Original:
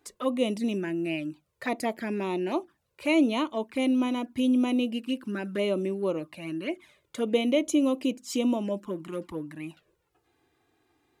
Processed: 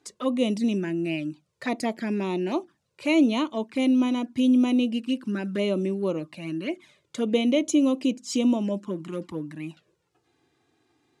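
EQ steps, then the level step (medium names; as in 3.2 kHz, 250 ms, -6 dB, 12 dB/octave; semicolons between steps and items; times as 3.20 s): high-pass 150 Hz 12 dB/octave; low-pass 6.6 kHz 12 dB/octave; tone controls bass +9 dB, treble +8 dB; 0.0 dB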